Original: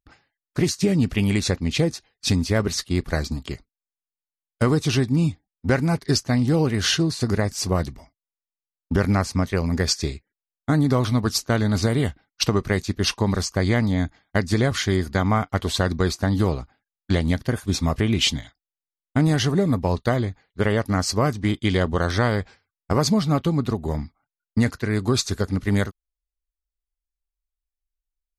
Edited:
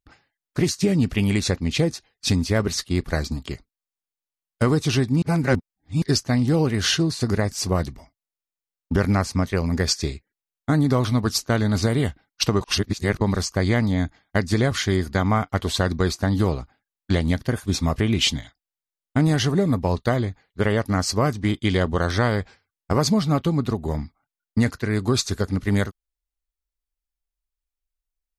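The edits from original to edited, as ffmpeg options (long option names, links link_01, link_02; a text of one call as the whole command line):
ffmpeg -i in.wav -filter_complex "[0:a]asplit=5[link_01][link_02][link_03][link_04][link_05];[link_01]atrim=end=5.222[link_06];[link_02]atrim=start=5.218:end=6.022,asetpts=PTS-STARTPTS,areverse[link_07];[link_03]atrim=start=6.018:end=12.612[link_08];[link_04]atrim=start=12.608:end=13.212,asetpts=PTS-STARTPTS,areverse[link_09];[link_05]atrim=start=13.208[link_10];[link_06][link_07]acrossfade=duration=0.004:curve1=hsin:curve2=hsin[link_11];[link_11][link_08]acrossfade=duration=0.004:curve1=hsin:curve2=hsin[link_12];[link_12][link_09]acrossfade=duration=0.004:curve1=hsin:curve2=hsin[link_13];[link_13][link_10]acrossfade=duration=0.004:curve1=hsin:curve2=hsin" out.wav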